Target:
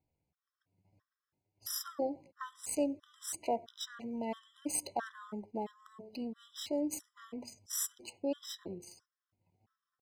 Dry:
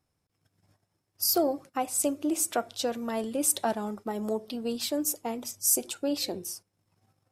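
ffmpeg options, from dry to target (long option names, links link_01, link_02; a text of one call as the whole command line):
ffmpeg -i in.wav -af "atempo=0.73,adynamicsmooth=sensitivity=6:basefreq=3900,afftfilt=real='re*gt(sin(2*PI*1.5*pts/sr)*(1-2*mod(floor(b*sr/1024/1000),2)),0)':imag='im*gt(sin(2*PI*1.5*pts/sr)*(1-2*mod(floor(b*sr/1024/1000),2)),0)':win_size=1024:overlap=0.75,volume=-4.5dB" out.wav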